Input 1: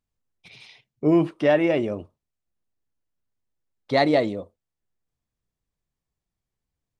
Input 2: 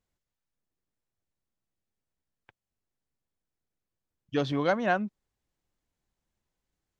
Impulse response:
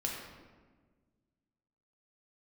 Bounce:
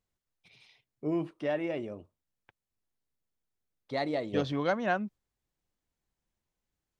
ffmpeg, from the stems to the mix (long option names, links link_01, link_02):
-filter_complex "[0:a]volume=-0.5dB[link_01];[1:a]volume=-3dB,asplit=2[link_02][link_03];[link_03]apad=whole_len=308363[link_04];[link_01][link_04]sidechaingate=range=-12dB:threshold=-48dB:ratio=16:detection=peak[link_05];[link_05][link_02]amix=inputs=2:normalize=0"